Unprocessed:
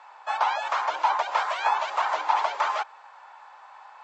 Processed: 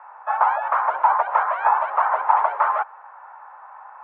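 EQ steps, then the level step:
high-pass filter 420 Hz 24 dB per octave
low-pass with resonance 1,400 Hz, resonance Q 1.5
high-frequency loss of the air 430 metres
+5.0 dB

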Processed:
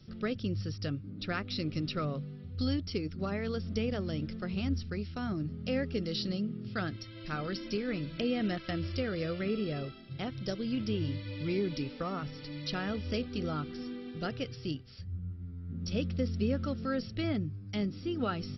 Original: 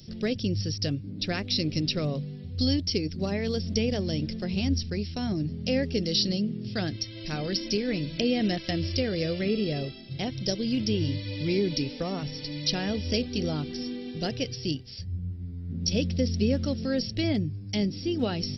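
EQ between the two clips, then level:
high-frequency loss of the air 280 metres
parametric band 1,300 Hz +15 dB 0.46 octaves
high-shelf EQ 4,100 Hz +7.5 dB
−5.5 dB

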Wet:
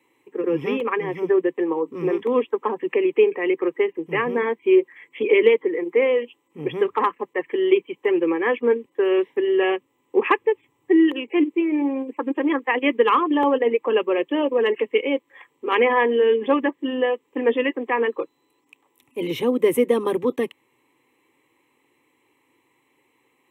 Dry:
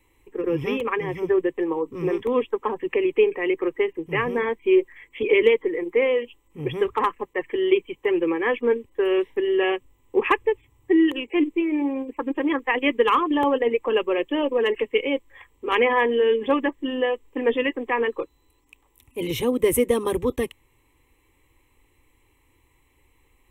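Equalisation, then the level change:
high-pass filter 170 Hz 24 dB per octave
dynamic equaliser 7,900 Hz, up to −5 dB, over −48 dBFS, Q 0.9
high-shelf EQ 4,800 Hz −8 dB
+2.0 dB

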